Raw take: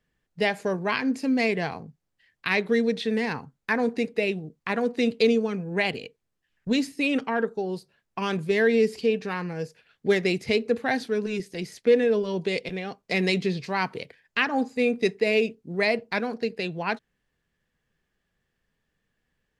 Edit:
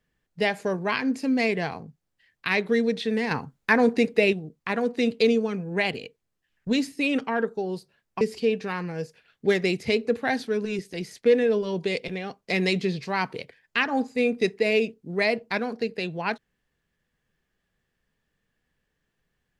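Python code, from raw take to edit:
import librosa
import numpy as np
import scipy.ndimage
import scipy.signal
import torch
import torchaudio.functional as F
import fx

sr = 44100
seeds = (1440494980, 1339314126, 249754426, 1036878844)

y = fx.edit(x, sr, fx.clip_gain(start_s=3.31, length_s=1.02, db=5.0),
    fx.cut(start_s=8.21, length_s=0.61), tone=tone)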